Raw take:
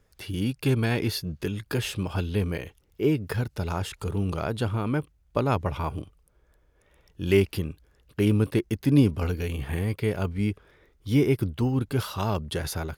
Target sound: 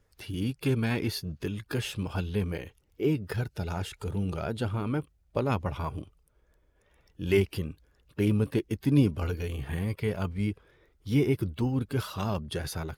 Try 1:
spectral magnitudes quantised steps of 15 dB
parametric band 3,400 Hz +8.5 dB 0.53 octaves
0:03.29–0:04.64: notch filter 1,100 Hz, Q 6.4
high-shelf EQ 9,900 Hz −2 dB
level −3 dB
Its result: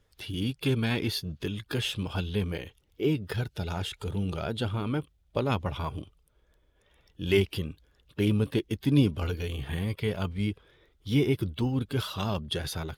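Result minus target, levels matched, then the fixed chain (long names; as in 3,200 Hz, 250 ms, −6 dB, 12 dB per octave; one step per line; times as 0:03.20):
4,000 Hz band +5.5 dB
spectral magnitudes quantised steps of 15 dB
0:03.29–0:04.64: notch filter 1,100 Hz, Q 6.4
high-shelf EQ 9,900 Hz −2 dB
level −3 dB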